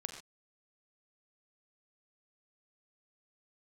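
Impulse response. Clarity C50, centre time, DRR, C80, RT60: 7.0 dB, 22 ms, 4.5 dB, 7.5 dB, not exponential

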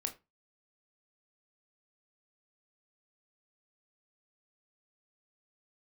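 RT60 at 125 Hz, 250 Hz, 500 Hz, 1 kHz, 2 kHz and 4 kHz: 0.35, 0.25, 0.25, 0.25, 0.20, 0.20 s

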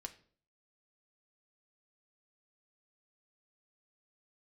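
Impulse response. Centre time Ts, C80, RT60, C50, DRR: 6 ms, 19.0 dB, 0.50 s, 15.5 dB, 4.5 dB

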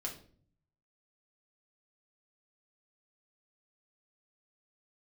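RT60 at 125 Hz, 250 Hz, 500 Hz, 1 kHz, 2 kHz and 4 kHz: 1.1, 0.80, 0.55, 0.40, 0.40, 0.35 s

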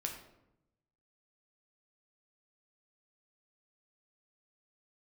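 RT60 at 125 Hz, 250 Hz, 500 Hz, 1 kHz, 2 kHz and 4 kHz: 1.3, 1.1, 0.90, 0.80, 0.65, 0.50 s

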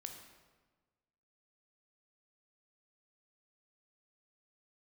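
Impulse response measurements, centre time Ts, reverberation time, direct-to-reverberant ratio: 33 ms, 1.4 s, 4.0 dB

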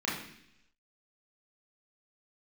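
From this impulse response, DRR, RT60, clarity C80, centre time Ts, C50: -7.0 dB, 0.70 s, 8.0 dB, 46 ms, 4.5 dB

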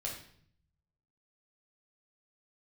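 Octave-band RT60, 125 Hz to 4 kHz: 1.3, 0.90, 0.65, 0.55, 0.55, 0.55 s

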